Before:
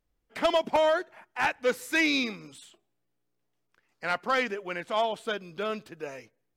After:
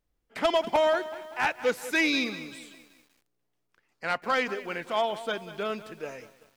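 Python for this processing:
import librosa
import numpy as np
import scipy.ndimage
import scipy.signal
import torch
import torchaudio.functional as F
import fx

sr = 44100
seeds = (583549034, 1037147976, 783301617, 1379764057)

y = fx.echo_crushed(x, sr, ms=192, feedback_pct=55, bits=8, wet_db=-14.5)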